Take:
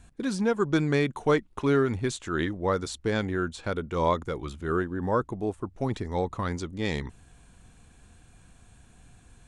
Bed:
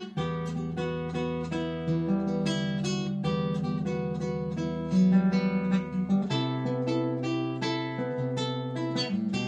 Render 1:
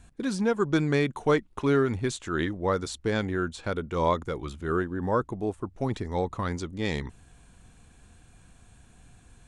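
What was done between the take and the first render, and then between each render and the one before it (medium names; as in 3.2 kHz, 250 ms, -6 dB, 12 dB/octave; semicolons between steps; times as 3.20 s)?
no audible change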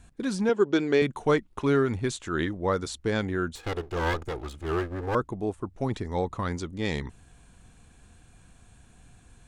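0.49–1.02 s: cabinet simulation 150–7000 Hz, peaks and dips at 150 Hz -9 dB, 410 Hz +6 dB, 1.1 kHz -5 dB, 3 kHz +5 dB; 3.55–5.15 s: comb filter that takes the minimum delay 2.4 ms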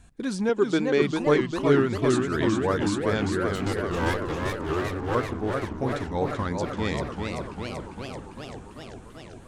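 modulated delay 392 ms, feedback 75%, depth 211 cents, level -4.5 dB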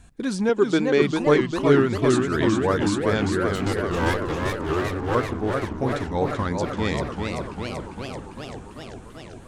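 trim +3 dB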